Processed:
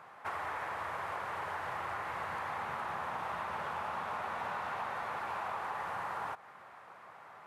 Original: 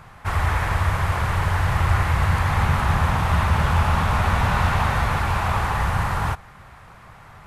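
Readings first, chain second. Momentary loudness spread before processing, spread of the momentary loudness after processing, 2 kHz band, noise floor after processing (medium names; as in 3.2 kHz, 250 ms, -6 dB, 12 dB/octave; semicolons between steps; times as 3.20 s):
3 LU, 10 LU, -14.5 dB, -54 dBFS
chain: high-pass 440 Hz 12 dB/octave; compression, threshold -30 dBFS, peak gain reduction 9.5 dB; treble shelf 2.3 kHz -12 dB; trim -3 dB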